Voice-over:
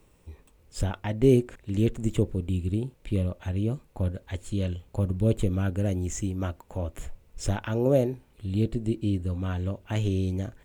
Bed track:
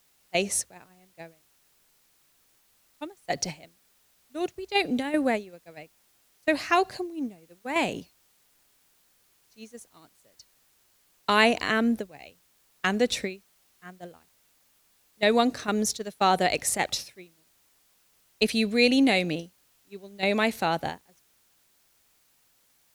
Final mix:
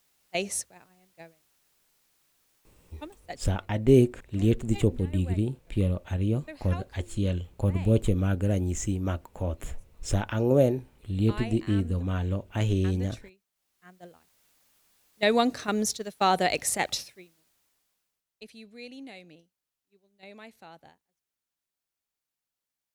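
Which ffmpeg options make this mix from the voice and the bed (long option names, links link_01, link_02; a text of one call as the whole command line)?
ffmpeg -i stem1.wav -i stem2.wav -filter_complex "[0:a]adelay=2650,volume=1dB[link_01];[1:a]volume=14dB,afade=type=out:start_time=3.17:duration=0.23:silence=0.177828,afade=type=in:start_time=13.52:duration=0.93:silence=0.125893,afade=type=out:start_time=16.95:duration=1.28:silence=0.0794328[link_02];[link_01][link_02]amix=inputs=2:normalize=0" out.wav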